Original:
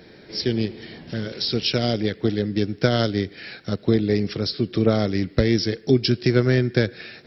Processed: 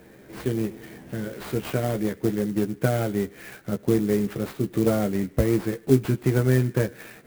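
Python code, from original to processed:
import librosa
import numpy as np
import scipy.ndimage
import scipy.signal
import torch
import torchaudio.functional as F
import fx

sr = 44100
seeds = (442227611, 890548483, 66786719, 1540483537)

y = fx.cvsd(x, sr, bps=32000)
y = scipy.signal.sosfilt(scipy.signal.butter(2, 2200.0, 'lowpass', fs=sr, output='sos'), y)
y = fx.doubler(y, sr, ms=15.0, db=-6.0)
y = fx.clock_jitter(y, sr, seeds[0], jitter_ms=0.042)
y = y * 10.0 ** (-2.5 / 20.0)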